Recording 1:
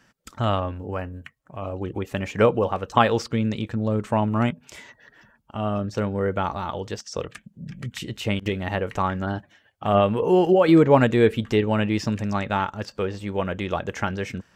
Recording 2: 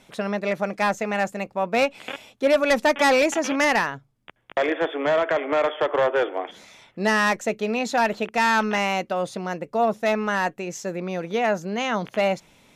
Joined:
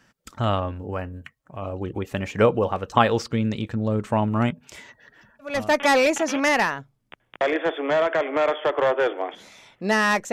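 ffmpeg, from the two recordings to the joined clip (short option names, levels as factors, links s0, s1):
-filter_complex "[0:a]apad=whole_dur=10.32,atrim=end=10.32,atrim=end=5.75,asetpts=PTS-STARTPTS[s0];[1:a]atrim=start=2.55:end=7.48,asetpts=PTS-STARTPTS[s1];[s0][s1]acrossfade=d=0.36:c1=tri:c2=tri"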